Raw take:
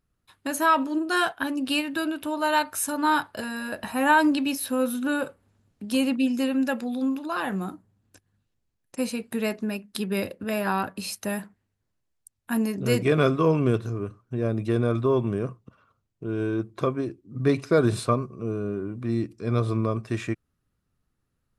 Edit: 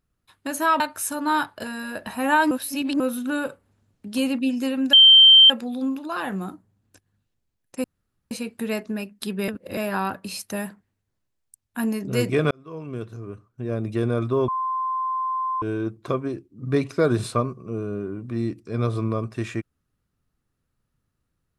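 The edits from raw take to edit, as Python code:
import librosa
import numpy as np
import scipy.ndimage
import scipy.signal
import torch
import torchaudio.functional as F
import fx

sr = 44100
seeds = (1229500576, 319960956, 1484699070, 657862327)

y = fx.edit(x, sr, fx.cut(start_s=0.8, length_s=1.77),
    fx.reverse_span(start_s=4.28, length_s=0.49),
    fx.insert_tone(at_s=6.7, length_s=0.57, hz=3130.0, db=-7.5),
    fx.insert_room_tone(at_s=9.04, length_s=0.47),
    fx.reverse_span(start_s=10.21, length_s=0.29),
    fx.fade_in_span(start_s=13.24, length_s=1.43),
    fx.bleep(start_s=15.21, length_s=1.14, hz=1040.0, db=-22.5), tone=tone)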